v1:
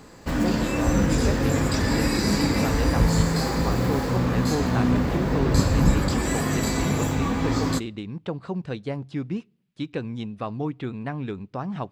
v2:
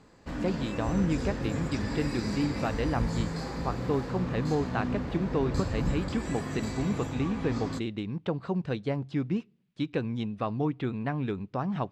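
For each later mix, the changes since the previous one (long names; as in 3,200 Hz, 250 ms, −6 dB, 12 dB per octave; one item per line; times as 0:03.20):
background −10.5 dB
master: add high-frequency loss of the air 54 metres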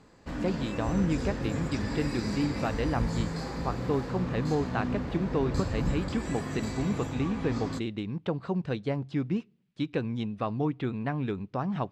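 nothing changed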